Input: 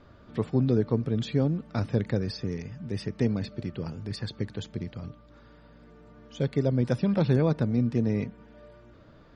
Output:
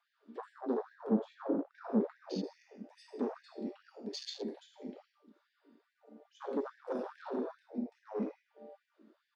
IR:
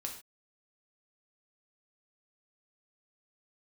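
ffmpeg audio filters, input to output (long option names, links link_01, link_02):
-filter_complex "[0:a]asettb=1/sr,asplit=3[link_01][link_02][link_03];[link_01]atrim=end=7.354[link_04];[link_02]atrim=start=7.35:end=8.03,asetpts=PTS-STARTPTS,afade=type=in:duration=0.004:curve=qsin,afade=type=out:start_time=0.676:duration=0.004:curve=qsin,acompressor=threshold=-30dB:ratio=6[link_05];[link_03]atrim=start=8.026[link_06];[link_04][link_05]acrossfade=duration=0.004:curve1=hsin:curve2=qsin[link_07];[link_07][link_06]acrossfade=duration=0.004:curve1=qsin:curve2=hsin[link_08];[1:a]atrim=start_sample=2205,atrim=end_sample=6174,asetrate=31752,aresample=44100[link_09];[link_08][link_09]afir=irnorm=-1:irlink=0,alimiter=limit=-17dB:level=0:latency=1:release=151,aeval=exprs='0.0944*(abs(mod(val(0)/0.0944+3,4)-2)-1)':channel_layout=same,aecho=1:1:78|156|234|312:0.178|0.0818|0.0376|0.0173,asoftclip=type=tanh:threshold=-25dB,afwtdn=0.00794,asettb=1/sr,asplit=3[link_10][link_11][link_12];[link_10]atrim=end=1.104[link_13];[link_11]atrim=start=1.1:end=2.44,asetpts=PTS-STARTPTS,afade=type=in:duration=0.004:curve=qsin,afade=type=out:start_time=1.336:duration=0.004:curve=qsin,aemphasis=mode=reproduction:type=riaa[link_14];[link_12]atrim=start=2.436[link_15];[link_13][link_14]acrossfade=duration=0.004:curve1=hsin:curve2=qsin[link_16];[link_16][link_15]acrossfade=duration=0.004:curve1=qsin:curve2=hsin,afftfilt=real='re*gte(b*sr/1024,200*pow(1600/200,0.5+0.5*sin(2*PI*2.4*pts/sr)))':imag='im*gte(b*sr/1024,200*pow(1600/200,0.5+0.5*sin(2*PI*2.4*pts/sr)))':win_size=1024:overlap=0.75"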